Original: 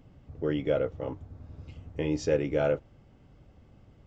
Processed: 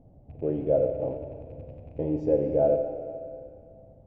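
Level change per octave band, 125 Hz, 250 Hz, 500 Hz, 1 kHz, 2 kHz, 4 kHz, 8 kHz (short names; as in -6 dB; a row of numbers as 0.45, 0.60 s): +0.5 dB, +1.5 dB, +4.5 dB, +3.5 dB, under -15 dB, under -20 dB, n/a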